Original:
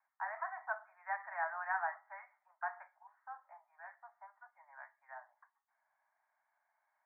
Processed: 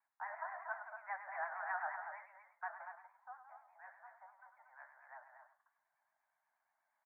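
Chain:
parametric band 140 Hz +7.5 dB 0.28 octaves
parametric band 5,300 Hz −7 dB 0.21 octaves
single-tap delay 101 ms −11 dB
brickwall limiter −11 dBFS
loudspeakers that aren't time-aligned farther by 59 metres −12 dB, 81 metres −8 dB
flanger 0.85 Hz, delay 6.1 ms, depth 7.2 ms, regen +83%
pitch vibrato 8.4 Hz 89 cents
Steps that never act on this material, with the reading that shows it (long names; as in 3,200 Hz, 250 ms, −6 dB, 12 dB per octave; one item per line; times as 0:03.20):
parametric band 140 Hz: nothing at its input below 540 Hz
parametric band 5,300 Hz: nothing at its input above 2,300 Hz
brickwall limiter −11 dBFS: peak of its input −22.5 dBFS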